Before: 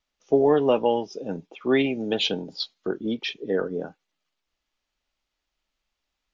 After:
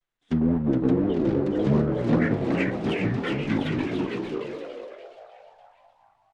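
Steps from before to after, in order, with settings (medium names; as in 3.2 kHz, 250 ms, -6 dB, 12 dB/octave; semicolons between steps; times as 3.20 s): block-companded coder 3-bit; low-pass that closes with the level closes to 1.3 kHz, closed at -17 dBFS; bass shelf 200 Hz +4.5 dB; level rider gain up to 4 dB; vibrato 0.93 Hz 55 cents; pitch shift -10 st; flange 1.2 Hz, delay 6.8 ms, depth 5.9 ms, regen +71%; on a send: frequency-shifting echo 418 ms, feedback 48%, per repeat +89 Hz, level -5 dB; on the sum: ever faster or slower copies 607 ms, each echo +2 st, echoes 3; warped record 33 1/3 rpm, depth 100 cents; trim -2 dB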